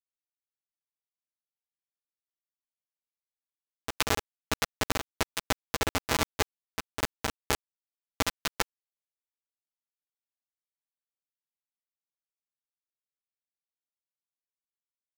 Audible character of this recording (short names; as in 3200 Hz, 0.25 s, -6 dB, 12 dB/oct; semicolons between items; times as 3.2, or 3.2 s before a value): a buzz of ramps at a fixed pitch in blocks of 256 samples; tremolo saw down 10 Hz, depth 70%; a quantiser's noise floor 6-bit, dither none; a shimmering, thickened sound